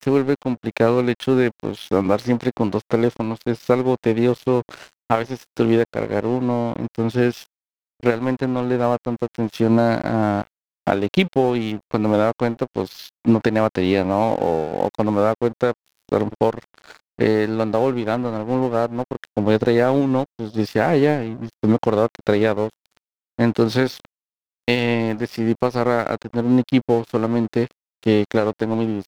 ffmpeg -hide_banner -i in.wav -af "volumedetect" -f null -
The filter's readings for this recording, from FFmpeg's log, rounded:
mean_volume: -20.3 dB
max_volume: -1.2 dB